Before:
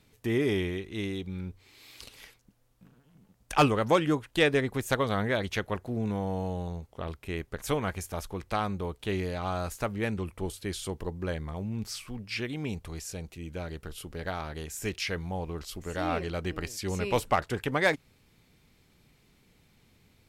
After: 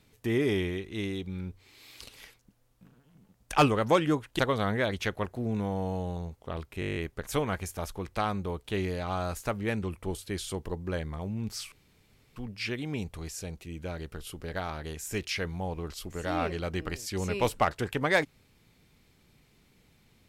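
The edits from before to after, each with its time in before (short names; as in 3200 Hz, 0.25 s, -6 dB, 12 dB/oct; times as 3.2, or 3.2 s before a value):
4.39–4.9 cut
7.31 stutter 0.02 s, 9 plays
12.07 insert room tone 0.64 s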